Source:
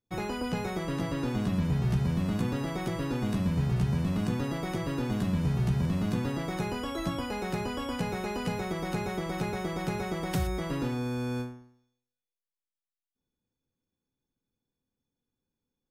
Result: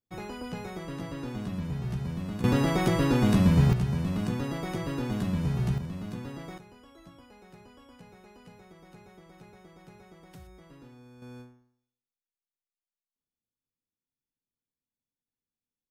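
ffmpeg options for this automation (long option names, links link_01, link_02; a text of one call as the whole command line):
ffmpeg -i in.wav -af "asetnsamples=nb_out_samples=441:pad=0,asendcmd='2.44 volume volume 7.5dB;3.73 volume volume -0.5dB;5.78 volume volume -8dB;6.58 volume volume -20dB;11.22 volume volume -13dB',volume=-5.5dB" out.wav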